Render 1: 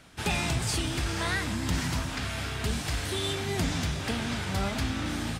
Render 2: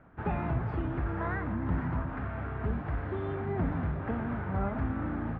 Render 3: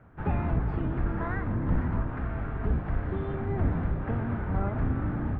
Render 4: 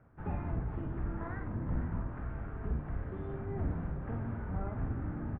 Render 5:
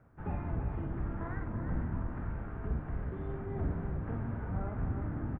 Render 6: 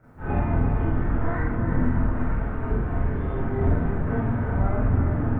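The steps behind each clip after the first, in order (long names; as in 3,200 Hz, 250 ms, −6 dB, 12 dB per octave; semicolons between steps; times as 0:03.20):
low-pass filter 1,500 Hz 24 dB per octave; level −1 dB
sub-octave generator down 1 octave, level +3 dB
reversed playback; upward compression, threshold −34 dBFS; reversed playback; high-frequency loss of the air 320 metres; double-tracking delay 48 ms −6.5 dB; level −8.5 dB
single-tap delay 332 ms −7.5 dB
four-comb reverb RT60 0.41 s, combs from 25 ms, DRR −9.5 dB; level +3.5 dB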